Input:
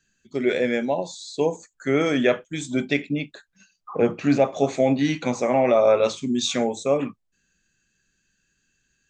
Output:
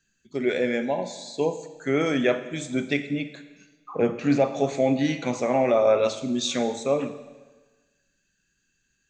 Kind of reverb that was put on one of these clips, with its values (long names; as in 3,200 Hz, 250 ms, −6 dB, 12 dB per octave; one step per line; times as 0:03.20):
four-comb reverb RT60 1.3 s, DRR 11 dB
level −2.5 dB